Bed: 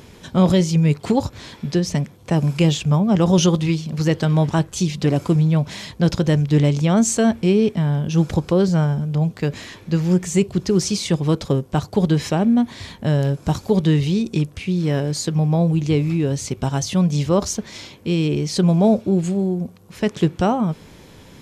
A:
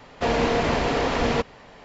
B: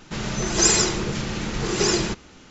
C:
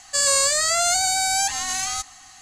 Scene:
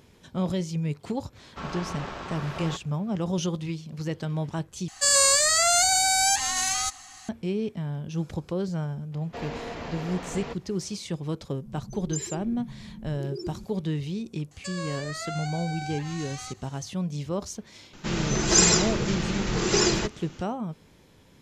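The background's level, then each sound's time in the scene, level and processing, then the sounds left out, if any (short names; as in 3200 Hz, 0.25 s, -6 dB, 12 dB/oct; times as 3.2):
bed -12.5 dB
1.35 add A -11 dB + ring modulator 640 Hz
4.88 replace with C -0.5 dB
9.12 add A -14 dB
11.51 add B -10 dB + loudest bins only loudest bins 4
14.51 add C -11.5 dB + treble ducked by the level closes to 3000 Hz, closed at -19.5 dBFS
17.93 add B -1 dB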